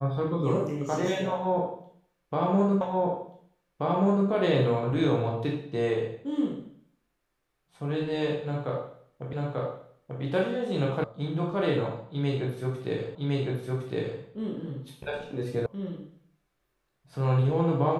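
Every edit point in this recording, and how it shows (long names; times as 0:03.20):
0:02.81: the same again, the last 1.48 s
0:09.33: the same again, the last 0.89 s
0:11.04: cut off before it has died away
0:13.15: the same again, the last 1.06 s
0:15.66: cut off before it has died away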